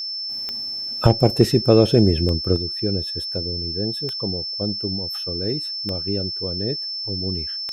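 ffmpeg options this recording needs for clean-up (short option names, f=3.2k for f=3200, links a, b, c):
-af "adeclick=t=4,bandreject=f=5.3k:w=30"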